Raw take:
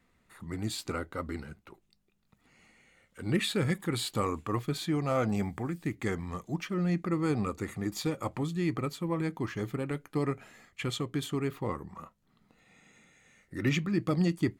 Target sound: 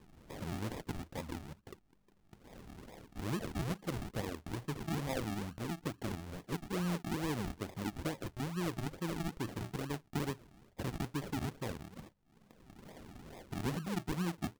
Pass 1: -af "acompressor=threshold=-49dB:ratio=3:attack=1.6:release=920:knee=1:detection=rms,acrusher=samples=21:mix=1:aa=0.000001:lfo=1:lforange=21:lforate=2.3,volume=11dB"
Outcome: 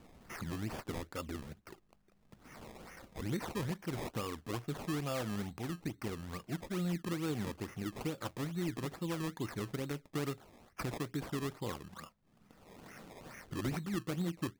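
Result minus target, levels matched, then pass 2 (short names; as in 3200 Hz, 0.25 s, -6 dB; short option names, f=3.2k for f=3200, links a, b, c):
decimation with a swept rate: distortion -10 dB
-af "acompressor=threshold=-49dB:ratio=3:attack=1.6:release=920:knee=1:detection=rms,acrusher=samples=60:mix=1:aa=0.000001:lfo=1:lforange=60:lforate=2.3,volume=11dB"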